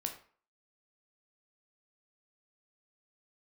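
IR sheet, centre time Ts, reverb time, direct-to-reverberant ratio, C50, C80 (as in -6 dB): 15 ms, 0.45 s, 3.5 dB, 9.0 dB, 13.0 dB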